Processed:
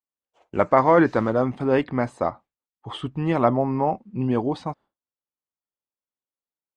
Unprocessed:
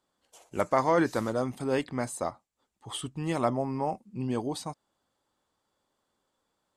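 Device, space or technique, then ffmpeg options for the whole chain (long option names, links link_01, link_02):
hearing-loss simulation: -af "lowpass=2400,agate=range=-33dB:threshold=-50dB:ratio=3:detection=peak,volume=8dB"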